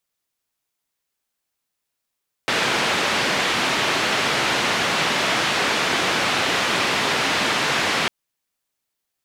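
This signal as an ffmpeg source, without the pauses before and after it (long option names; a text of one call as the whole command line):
ffmpeg -f lavfi -i "anoisesrc=color=white:duration=5.6:sample_rate=44100:seed=1,highpass=frequency=140,lowpass=frequency=3000,volume=-7.7dB" out.wav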